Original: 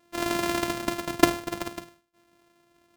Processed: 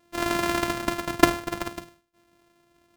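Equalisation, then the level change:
dynamic equaliser 1,400 Hz, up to +4 dB, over −38 dBFS, Q 0.84
low-shelf EQ 97 Hz +7 dB
0.0 dB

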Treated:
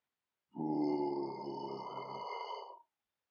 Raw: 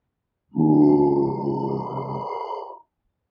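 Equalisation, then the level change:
first difference
dynamic equaliser 900 Hz, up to −4 dB, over −59 dBFS, Q 2.7
high-frequency loss of the air 160 metres
+8.5 dB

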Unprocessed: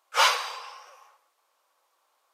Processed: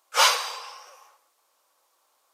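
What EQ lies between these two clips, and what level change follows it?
bass and treble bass +6 dB, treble +7 dB
low-shelf EQ 490 Hz +4 dB
0.0 dB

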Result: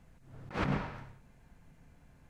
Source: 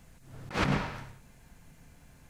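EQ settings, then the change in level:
high-shelf EQ 3,300 Hz −11.5 dB
−3.5 dB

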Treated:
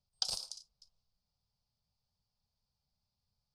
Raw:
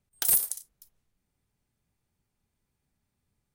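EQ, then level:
transistor ladder low-pass 5,200 Hz, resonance 75%
phaser with its sweep stopped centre 780 Hz, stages 4
+6.5 dB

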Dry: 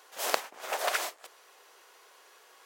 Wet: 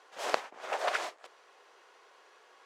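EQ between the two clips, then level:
high-pass filter 100 Hz
low-pass filter 7,600 Hz 12 dB per octave
high-shelf EQ 3,600 Hz −9 dB
0.0 dB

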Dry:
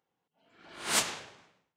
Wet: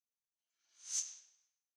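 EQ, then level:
resonant band-pass 6,200 Hz, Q 13
+2.5 dB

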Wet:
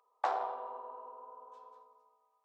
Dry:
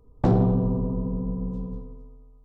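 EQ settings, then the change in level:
inverse Chebyshev high-pass filter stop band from 190 Hz, stop band 70 dB
high-shelf EQ 2,100 Hz −10.5 dB
+5.5 dB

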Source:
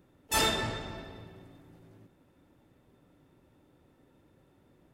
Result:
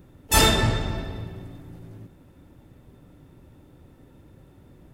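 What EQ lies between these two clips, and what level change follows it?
low-shelf EQ 160 Hz +12 dB
high-shelf EQ 8,100 Hz +4 dB
+7.5 dB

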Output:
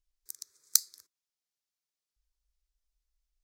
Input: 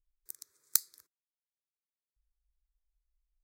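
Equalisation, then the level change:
parametric band 5,400 Hz +9.5 dB 1.3 octaves
−1.0 dB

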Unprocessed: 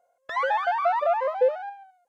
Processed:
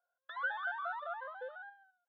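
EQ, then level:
pair of resonant band-passes 2,300 Hz, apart 1.2 octaves
high-frequency loss of the air 350 metres
0.0 dB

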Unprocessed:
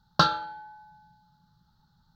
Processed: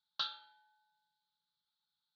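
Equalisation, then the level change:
resonant band-pass 3,400 Hz, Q 3.6
high-frequency loss of the air 71 metres
−4.0 dB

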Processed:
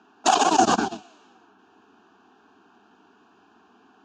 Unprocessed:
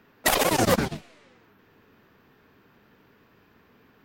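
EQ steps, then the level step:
high-frequency loss of the air 57 metres
loudspeaker in its box 160–7,400 Hz, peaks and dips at 180 Hz +3 dB, 750 Hz +9 dB, 1,600 Hz +8 dB, 2,800 Hz +7 dB, 6,700 Hz +10 dB
phaser with its sweep stopped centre 540 Hz, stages 6
+3.5 dB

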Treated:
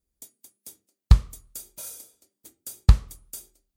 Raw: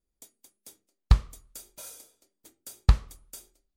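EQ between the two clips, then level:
high-pass filter 65 Hz 6 dB per octave
low-shelf EQ 230 Hz +9.5 dB
high-shelf EQ 5,700 Hz +9 dB
−1.0 dB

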